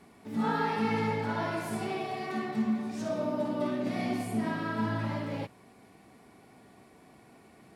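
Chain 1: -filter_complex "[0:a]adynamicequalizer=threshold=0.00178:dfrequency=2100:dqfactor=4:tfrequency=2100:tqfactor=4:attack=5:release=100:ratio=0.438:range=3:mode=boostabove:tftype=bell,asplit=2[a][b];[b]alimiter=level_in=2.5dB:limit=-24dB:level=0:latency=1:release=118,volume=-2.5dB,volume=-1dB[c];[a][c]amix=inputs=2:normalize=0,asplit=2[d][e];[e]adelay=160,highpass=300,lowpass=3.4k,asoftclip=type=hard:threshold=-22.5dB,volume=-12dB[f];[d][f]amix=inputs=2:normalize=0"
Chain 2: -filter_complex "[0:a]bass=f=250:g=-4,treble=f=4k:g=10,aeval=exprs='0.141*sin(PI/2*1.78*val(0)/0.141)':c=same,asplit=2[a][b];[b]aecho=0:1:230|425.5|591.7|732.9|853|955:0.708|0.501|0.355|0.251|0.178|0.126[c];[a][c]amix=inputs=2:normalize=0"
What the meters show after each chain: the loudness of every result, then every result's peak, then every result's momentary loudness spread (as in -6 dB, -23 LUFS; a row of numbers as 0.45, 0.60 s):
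-28.0, -22.0 LUFS; -14.5, -9.5 dBFS; 4, 11 LU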